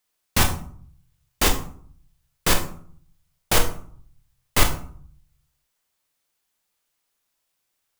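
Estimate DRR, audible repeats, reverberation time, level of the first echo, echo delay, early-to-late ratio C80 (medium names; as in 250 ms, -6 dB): 4.0 dB, no echo, 0.55 s, no echo, no echo, 13.5 dB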